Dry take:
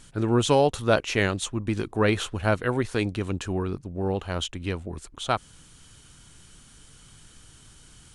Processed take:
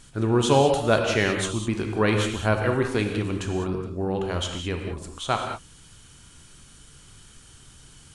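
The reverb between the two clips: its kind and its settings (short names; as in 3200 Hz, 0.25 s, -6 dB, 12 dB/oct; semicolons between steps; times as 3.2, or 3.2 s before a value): non-linear reverb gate 0.23 s flat, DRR 3 dB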